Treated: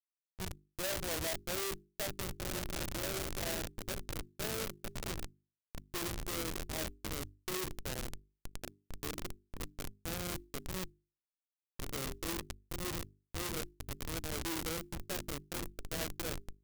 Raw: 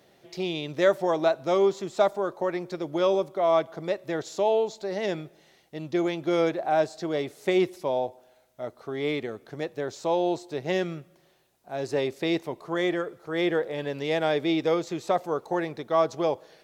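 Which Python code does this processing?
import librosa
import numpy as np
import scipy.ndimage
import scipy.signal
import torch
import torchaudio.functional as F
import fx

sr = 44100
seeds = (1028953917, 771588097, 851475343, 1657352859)

y = fx.spec_trails(x, sr, decay_s=0.43)
y = fx.filter_sweep_lowpass(y, sr, from_hz=5600.0, to_hz=450.0, start_s=0.19, end_s=1.6, q=0.78)
y = fx.echo_diffused(y, sr, ms=1832, feedback_pct=44, wet_db=-7.5)
y = fx.schmitt(y, sr, flips_db=-25.0)
y = librosa.effects.preemphasis(y, coef=0.8, zi=[0.0])
y = fx.hum_notches(y, sr, base_hz=50, count=8)
y = fx.clock_jitter(y, sr, seeds[0], jitter_ms=0.025)
y = y * 10.0 ** (3.0 / 20.0)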